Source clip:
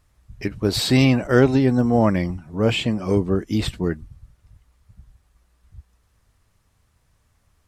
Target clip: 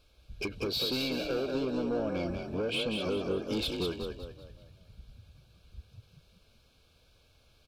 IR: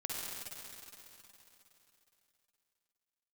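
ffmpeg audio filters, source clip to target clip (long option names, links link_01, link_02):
-filter_complex "[0:a]equalizer=frequency=125:width_type=o:width=1:gain=-10,equalizer=frequency=500:width_type=o:width=1:gain=9,equalizer=frequency=1000:width_type=o:width=1:gain=-8,equalizer=frequency=2000:width_type=o:width=1:gain=5,equalizer=frequency=4000:width_type=o:width=1:gain=12,equalizer=frequency=8000:width_type=o:width=1:gain=-8,acompressor=threshold=-24dB:ratio=16,asoftclip=type=tanh:threshold=-26dB,asuperstop=centerf=1900:order=20:qfactor=4,asplit=2[link_01][link_02];[link_02]asplit=5[link_03][link_04][link_05][link_06][link_07];[link_03]adelay=191,afreqshift=40,volume=-5dB[link_08];[link_04]adelay=382,afreqshift=80,volume=-13dB[link_09];[link_05]adelay=573,afreqshift=120,volume=-20.9dB[link_10];[link_06]adelay=764,afreqshift=160,volume=-28.9dB[link_11];[link_07]adelay=955,afreqshift=200,volume=-36.8dB[link_12];[link_08][link_09][link_10][link_11][link_12]amix=inputs=5:normalize=0[link_13];[link_01][link_13]amix=inputs=2:normalize=0,volume=-1.5dB"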